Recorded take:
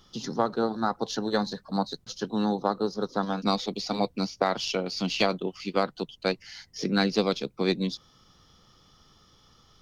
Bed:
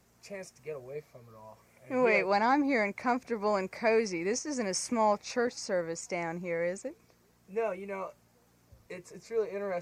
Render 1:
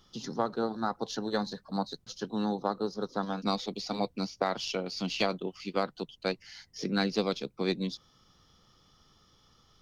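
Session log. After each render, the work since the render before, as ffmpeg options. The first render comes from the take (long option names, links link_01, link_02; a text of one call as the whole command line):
ffmpeg -i in.wav -af "volume=-4.5dB" out.wav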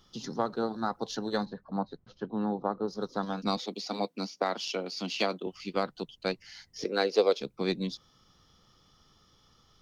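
ffmpeg -i in.wav -filter_complex "[0:a]asplit=3[link_01][link_02][link_03];[link_01]afade=type=out:start_time=1.44:duration=0.02[link_04];[link_02]lowpass=1700,afade=type=in:start_time=1.44:duration=0.02,afade=type=out:start_time=2.87:duration=0.02[link_05];[link_03]afade=type=in:start_time=2.87:duration=0.02[link_06];[link_04][link_05][link_06]amix=inputs=3:normalize=0,asettb=1/sr,asplit=3[link_07][link_08][link_09];[link_07]atrim=end=3.574[link_10];[link_08]atrim=start=3.57:end=5.47,asetpts=PTS-STARTPTS,afade=type=in:duration=0.004:curve=qsin,afade=type=out:start_time=1.896:duration=0.004:curve=qsin,highpass=frequency=200:width=0.5412,highpass=frequency=200:width=1.3066[link_11];[link_09]atrim=start=5.466[link_12];[link_10][link_11]acrossfade=duration=0.004:curve1=hsin:curve2=qsin[link_13];[link_13][link_12]acrossfade=duration=0.004:curve1=qsin:curve2=hsin,asettb=1/sr,asplit=3[link_14][link_15][link_16];[link_14]atrim=end=6.844[link_17];[link_15]atrim=start=6.84:end=7.41,asetpts=PTS-STARTPTS,afade=type=in:duration=0.004:curve=qsin,afade=type=out:start_time=0.566:duration=0.004:curve=qsin,highpass=frequency=460:width_type=q:width=2.8[link_18];[link_16]atrim=start=7.406[link_19];[link_17][link_18]acrossfade=duration=0.004:curve1=hsin:curve2=qsin[link_20];[link_20][link_19]acrossfade=duration=0.004:curve1=qsin:curve2=hsin" out.wav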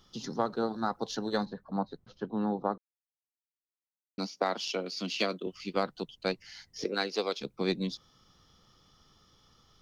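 ffmpeg -i in.wav -filter_complex "[0:a]asettb=1/sr,asplit=3[link_01][link_02][link_03];[link_01]atrim=end=4.814[link_04];[link_02]atrim=start=4.81:end=5.61,asetpts=PTS-STARTPTS,afade=type=in:duration=0.004:curve=qsin,afade=type=out:start_time=0.796:duration=0.004:curve=qsin,equalizer=frequency=830:width_type=o:width=0.35:gain=-12.5[link_05];[link_03]atrim=start=5.606[link_06];[link_04][link_05]acrossfade=duration=0.004:curve1=hsin:curve2=qsin[link_07];[link_07][link_06]acrossfade=duration=0.004:curve1=qsin:curve2=hsin,asettb=1/sr,asplit=3[link_08][link_09][link_10];[link_08]atrim=end=6.944[link_11];[link_09]atrim=start=6.94:end=7.44,asetpts=PTS-STARTPTS,afade=type=in:duration=0.004:curve=qsin,afade=type=out:start_time=0.496:duration=0.004:curve=qsin,equalizer=frequency=500:width=1.4:gain=-10[link_12];[link_10]atrim=start=7.436[link_13];[link_11][link_12]acrossfade=duration=0.004:curve1=hsin:curve2=qsin[link_14];[link_14][link_13]acrossfade=duration=0.004:curve1=qsin:curve2=hsin,asplit=3[link_15][link_16][link_17];[link_15]atrim=end=2.78,asetpts=PTS-STARTPTS,afade=type=out:start_time=2.776:duration=0.004:curve=hsin[link_18];[link_16]atrim=start=2.78:end=4.18,asetpts=PTS-STARTPTS,volume=0[link_19];[link_17]atrim=start=4.18,asetpts=PTS-STARTPTS,afade=type=in:duration=0.004:curve=hsin[link_20];[link_18][link_19][link_20]concat=n=3:v=0:a=1" out.wav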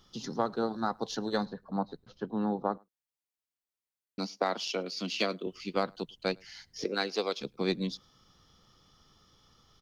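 ffmpeg -i in.wav -filter_complex "[0:a]asplit=2[link_01][link_02];[link_02]adelay=105,volume=-30dB,highshelf=frequency=4000:gain=-2.36[link_03];[link_01][link_03]amix=inputs=2:normalize=0" out.wav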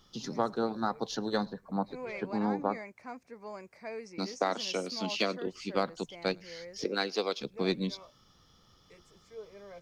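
ffmpeg -i in.wav -i bed.wav -filter_complex "[1:a]volume=-14.5dB[link_01];[0:a][link_01]amix=inputs=2:normalize=0" out.wav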